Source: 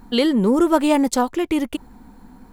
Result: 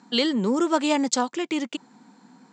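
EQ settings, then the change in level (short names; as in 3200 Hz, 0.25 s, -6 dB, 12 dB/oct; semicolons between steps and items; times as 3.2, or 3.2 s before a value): Chebyshev band-pass 150–7500 Hz, order 5; high shelf 2200 Hz +11 dB; -6.0 dB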